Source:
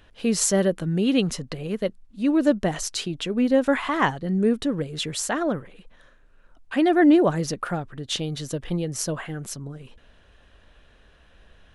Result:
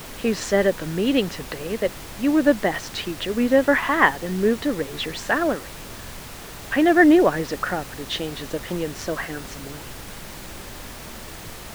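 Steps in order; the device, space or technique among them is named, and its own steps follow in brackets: horn gramophone (band-pass 270–3400 Hz; peaking EQ 1.8 kHz +7 dB 0.3 oct; wow and flutter; pink noise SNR 14 dB); trim +3.5 dB

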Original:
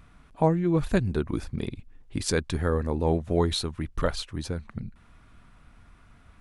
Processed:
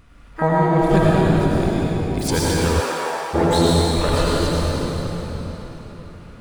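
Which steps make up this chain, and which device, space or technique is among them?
shimmer-style reverb (harmony voices +12 st -8 dB; reverberation RT60 4.2 s, pre-delay 76 ms, DRR -7 dB); 2.79–3.33 s: high-pass 390 Hz -> 1.1 kHz 12 dB/octave; trim +1.5 dB

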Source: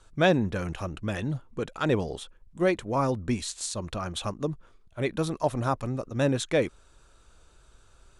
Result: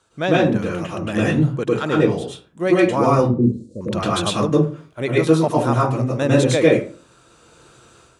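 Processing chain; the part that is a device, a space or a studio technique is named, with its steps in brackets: 3.22–3.81 s: elliptic low-pass 530 Hz, stop band 40 dB; far laptop microphone (reverberation RT60 0.40 s, pre-delay 98 ms, DRR -5 dB; high-pass 130 Hz 12 dB/octave; level rider gain up to 9 dB); trim -1 dB

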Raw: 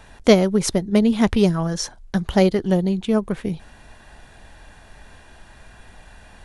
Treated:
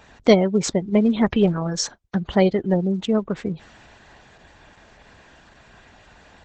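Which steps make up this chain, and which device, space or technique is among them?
1.57–2.97 s: gate -37 dBFS, range -45 dB; noise-suppressed video call (high-pass 110 Hz 6 dB/octave; spectral gate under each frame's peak -30 dB strong; Opus 12 kbps 48 kHz)

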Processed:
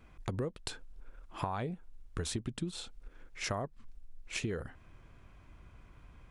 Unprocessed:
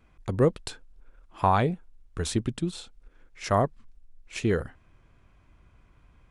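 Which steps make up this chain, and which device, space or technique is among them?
serial compression, leveller first (compression 2.5:1, threshold -25 dBFS, peak gain reduction 6.5 dB; compression 4:1, threshold -37 dBFS, peak gain reduction 13 dB); trim +2.5 dB

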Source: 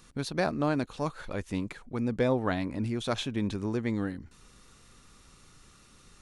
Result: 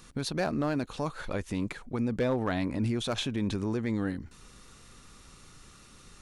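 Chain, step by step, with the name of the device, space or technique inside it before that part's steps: clipper into limiter (hard clipper -19.5 dBFS, distortion -21 dB; peak limiter -24.5 dBFS, peak gain reduction 5 dB); trim +3.5 dB

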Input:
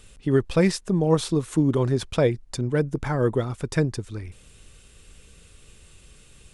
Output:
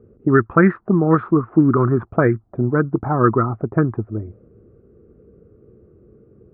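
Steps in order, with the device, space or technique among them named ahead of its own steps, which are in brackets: envelope filter bass rig (touch-sensitive low-pass 450–1600 Hz up, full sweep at -15.5 dBFS; cabinet simulation 81–2100 Hz, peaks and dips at 110 Hz +6 dB, 220 Hz +7 dB, 340 Hz +7 dB, 530 Hz -6 dB, 890 Hz -5 dB, 1.3 kHz +10 dB); trim +2.5 dB

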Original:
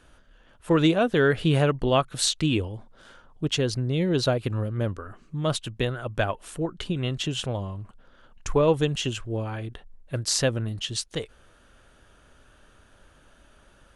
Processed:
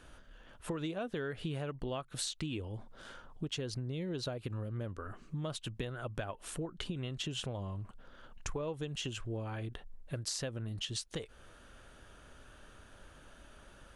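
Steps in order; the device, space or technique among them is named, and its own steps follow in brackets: serial compression, peaks first (compression, threshold -30 dBFS, peak gain reduction 14 dB; compression 1.5:1, threshold -44 dBFS, peak gain reduction 6.5 dB)

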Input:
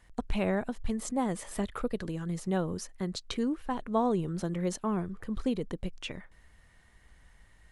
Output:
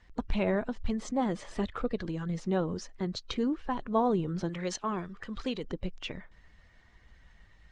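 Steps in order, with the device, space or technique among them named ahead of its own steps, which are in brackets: clip after many re-uploads (low-pass 6 kHz 24 dB/octave; coarse spectral quantiser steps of 15 dB); 4.49–5.64 s: tilt shelf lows -6.5 dB, about 800 Hz; trim +1 dB

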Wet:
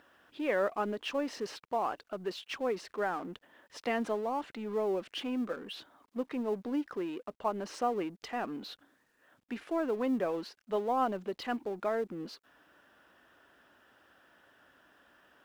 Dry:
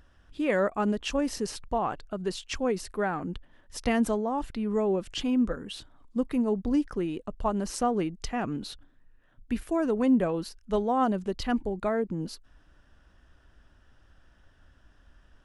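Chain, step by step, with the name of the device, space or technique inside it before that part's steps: phone line with mismatched companding (band-pass 340–3500 Hz; companding laws mixed up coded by mu); trim -4 dB

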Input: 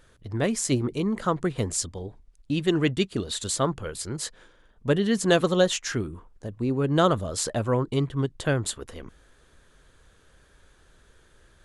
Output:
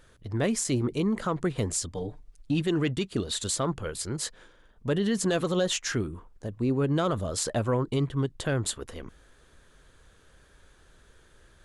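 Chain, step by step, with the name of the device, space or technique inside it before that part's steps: 1.94–2.62 s: comb 6.7 ms, depth 96%; soft clipper into limiter (saturation -9.5 dBFS, distortion -24 dB; peak limiter -18 dBFS, peak gain reduction 7 dB)

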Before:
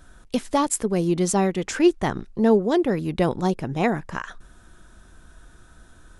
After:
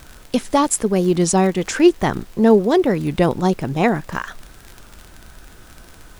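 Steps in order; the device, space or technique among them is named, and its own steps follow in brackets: warped LP (warped record 33 1/3 rpm, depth 100 cents; crackle 44 per s -31 dBFS; pink noise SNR 30 dB); trim +5 dB

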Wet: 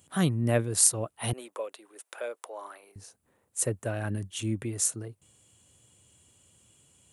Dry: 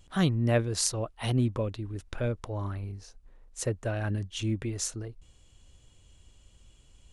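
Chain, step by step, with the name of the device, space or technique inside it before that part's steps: budget condenser microphone (high-pass 100 Hz 24 dB/octave; resonant high shelf 7.1 kHz +10 dB, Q 1.5); 1.33–2.96 s: high-pass 490 Hz 24 dB/octave

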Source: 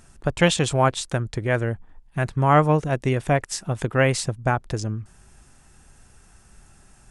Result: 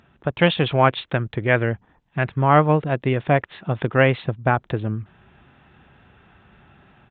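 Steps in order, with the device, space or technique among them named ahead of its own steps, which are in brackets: 0.65–2.36 s: dynamic bell 2.3 kHz, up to +5 dB, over -41 dBFS, Q 1.5; Bluetooth headset (high-pass 100 Hz 12 dB/octave; level rider gain up to 5.5 dB; resampled via 8 kHz; SBC 64 kbps 16 kHz)

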